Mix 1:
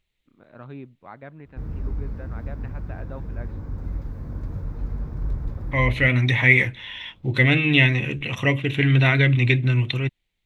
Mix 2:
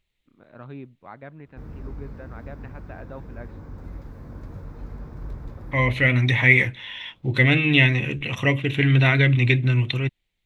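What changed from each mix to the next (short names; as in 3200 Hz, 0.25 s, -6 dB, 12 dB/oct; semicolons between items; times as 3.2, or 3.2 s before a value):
background: add low shelf 190 Hz -9 dB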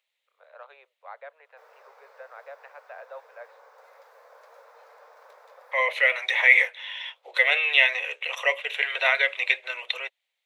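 master: add steep high-pass 490 Hz 72 dB/oct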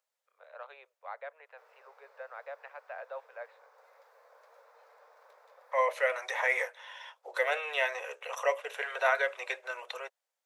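second voice: add band shelf 2800 Hz -15 dB 1.3 oct; background -7.5 dB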